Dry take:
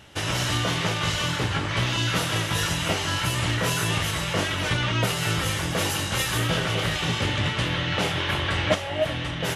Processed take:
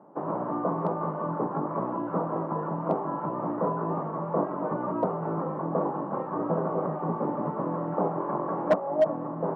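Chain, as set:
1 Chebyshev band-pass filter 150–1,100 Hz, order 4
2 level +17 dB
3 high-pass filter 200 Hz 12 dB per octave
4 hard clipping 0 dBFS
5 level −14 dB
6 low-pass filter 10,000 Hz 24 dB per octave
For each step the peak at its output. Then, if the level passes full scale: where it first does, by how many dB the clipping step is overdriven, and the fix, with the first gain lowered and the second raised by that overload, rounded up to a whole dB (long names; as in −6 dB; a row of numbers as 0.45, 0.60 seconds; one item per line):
−9.5, +7.5, +6.0, 0.0, −14.0, −14.0 dBFS
step 2, 6.0 dB
step 2 +11 dB, step 5 −8 dB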